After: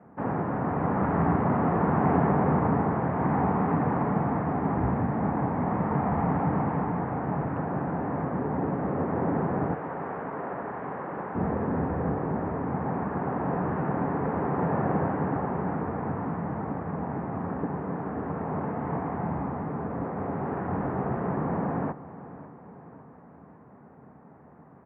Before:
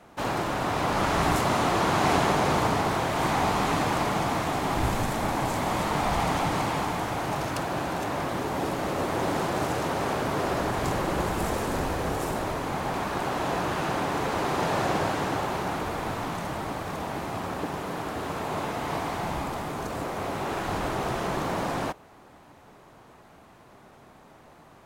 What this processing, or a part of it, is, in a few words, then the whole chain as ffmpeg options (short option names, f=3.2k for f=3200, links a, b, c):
bass cabinet: -filter_complex "[0:a]lowpass=1.5k,asettb=1/sr,asplit=3[a][b][c];[a]atrim=end=9.744[d];[b]atrim=start=9.74:end=11.35,asetpts=PTS-STARTPTS,afade=t=in:d=0.004:c=qsin,afade=t=out:st=1.606:d=0.004:c=qsin,highpass=f=850:p=1[e];[c]atrim=start=11.346[f];[d][e]acrossfade=d=0.004:c1=hsin:c2=qsin[g];[g][f]acrossfade=d=0.004:c1=qsin:c2=hsin,highpass=f=87:w=0.5412,highpass=f=87:w=1.3066,equalizer=f=110:t=q:w=4:g=-9,equalizer=f=340:t=q:w=4:g=-7,equalizer=f=600:t=q:w=4:g=-5,equalizer=f=1.8k:t=q:w=4:g=4,lowpass=f=2.3k:w=0.5412,lowpass=f=2.3k:w=1.3066,tiltshelf=f=720:g=7.5,aecho=1:1:553|1106|1659|2212|2765:0.158|0.0824|0.0429|0.0223|0.0116"